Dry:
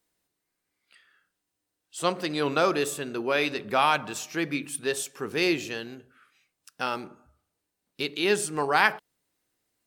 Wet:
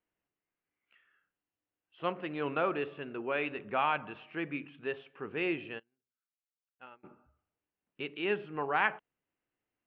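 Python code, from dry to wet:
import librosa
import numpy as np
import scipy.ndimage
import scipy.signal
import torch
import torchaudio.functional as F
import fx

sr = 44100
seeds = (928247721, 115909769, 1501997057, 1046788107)

y = scipy.signal.sosfilt(scipy.signal.ellip(4, 1.0, 60, 2900.0, 'lowpass', fs=sr, output='sos'), x)
y = fx.upward_expand(y, sr, threshold_db=-43.0, expansion=2.5, at=(5.78, 7.03), fade=0.02)
y = y * librosa.db_to_amplitude(-7.0)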